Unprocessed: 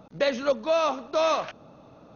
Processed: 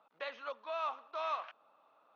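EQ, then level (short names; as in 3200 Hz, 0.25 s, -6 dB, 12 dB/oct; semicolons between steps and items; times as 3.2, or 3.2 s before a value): Chebyshev band-pass 1100–3000 Hz, order 2; air absorption 63 m; bell 2200 Hz -13 dB 2.8 oct; +1.5 dB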